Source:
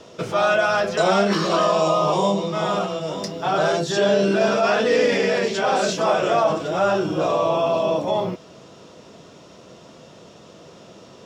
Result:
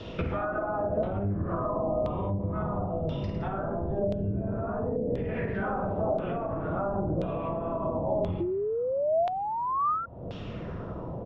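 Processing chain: octaver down 1 oct, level +4 dB; reverse bouncing-ball echo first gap 50 ms, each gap 1.1×, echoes 5; 8.4–10.06 painted sound rise 340–1400 Hz -15 dBFS; treble ducked by the level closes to 560 Hz, closed at -9.5 dBFS; compressor 8:1, threshold -31 dBFS, peak gain reduction 20.5 dB; low shelf 440 Hz +7.5 dB; LFO low-pass saw down 0.97 Hz 600–3500 Hz; 2.62–5.29 bell 1500 Hz -4 dB 2.1 oct; gain -2.5 dB

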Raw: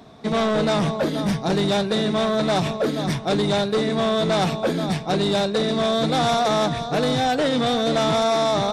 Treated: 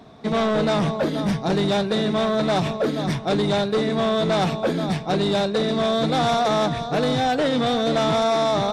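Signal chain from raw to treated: high shelf 5700 Hz -6 dB

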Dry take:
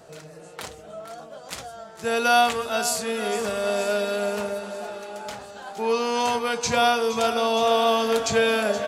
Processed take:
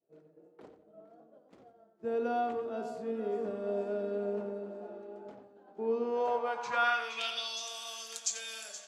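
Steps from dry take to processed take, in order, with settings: band-pass sweep 320 Hz -> 7000 Hz, 6–7.72; expander -43 dBFS; darkening echo 89 ms, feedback 27%, low-pass 4300 Hz, level -9 dB; gain -1.5 dB

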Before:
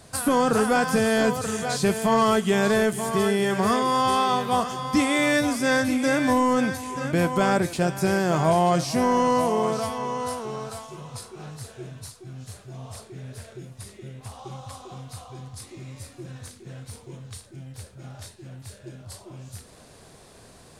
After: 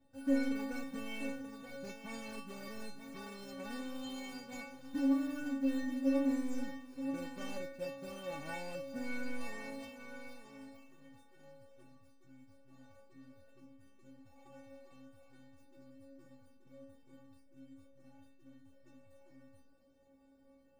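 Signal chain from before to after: median filter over 41 samples; metallic resonator 270 Hz, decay 0.72 s, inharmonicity 0.008; gain +6 dB

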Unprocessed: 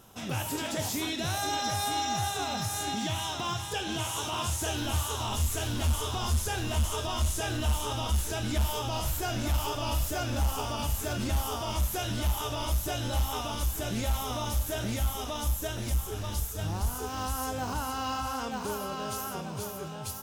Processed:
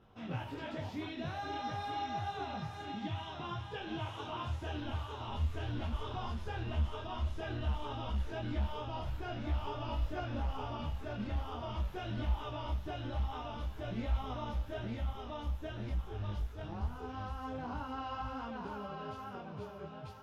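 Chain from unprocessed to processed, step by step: air absorption 340 m; detuned doubles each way 17 cents; gain -2.5 dB

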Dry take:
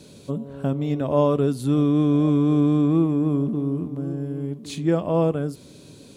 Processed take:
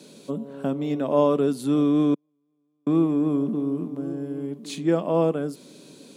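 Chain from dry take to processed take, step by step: 2.14–2.87 gate -7 dBFS, range -52 dB; HPF 180 Hz 24 dB/oct

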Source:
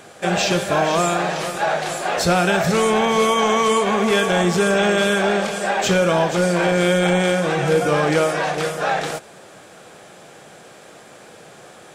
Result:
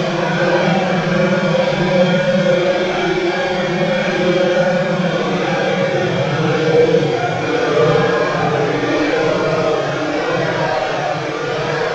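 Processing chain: CVSD 32 kbps; split-band echo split 1200 Hz, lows 0.203 s, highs 0.639 s, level -4 dB; Paulstretch 5.6×, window 0.05 s, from 6.53; gain +1 dB

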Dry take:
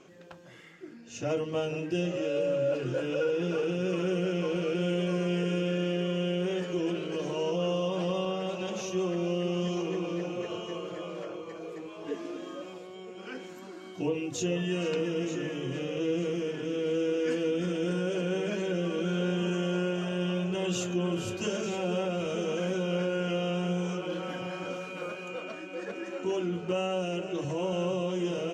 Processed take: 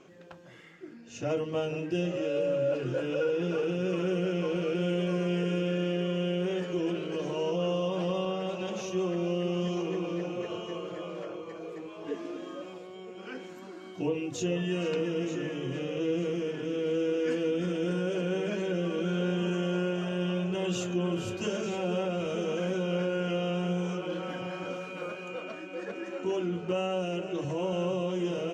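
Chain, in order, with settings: high shelf 4700 Hz -5 dB

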